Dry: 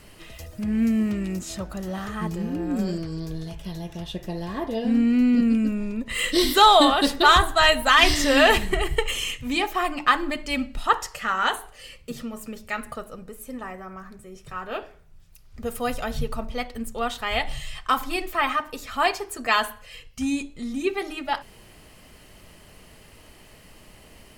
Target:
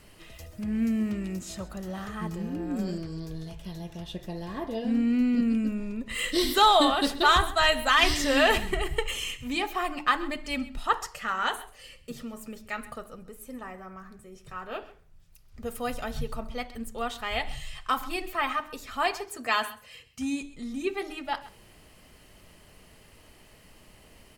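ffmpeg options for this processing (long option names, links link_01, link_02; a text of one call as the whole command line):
ffmpeg -i in.wav -filter_complex "[0:a]asettb=1/sr,asplit=3[link_01][link_02][link_03];[link_01]atrim=end=19.284[link_04];[link_02]atrim=start=19.28:end=20.43,asetpts=PTS-STARTPTS,afade=type=in:duration=0.004:curve=qsin,afade=type=out:start_time=1.146:duration=0.004:curve=qsin,highpass=81[link_05];[link_03]atrim=start=20.426[link_06];[link_04][link_05]acrossfade=duration=0.004:curve1=hsin:curve2=qsin[link_07];[link_07][link_06]acrossfade=duration=0.004:curve1=qsin:curve2=hsin,aecho=1:1:132:0.126,volume=-5dB" out.wav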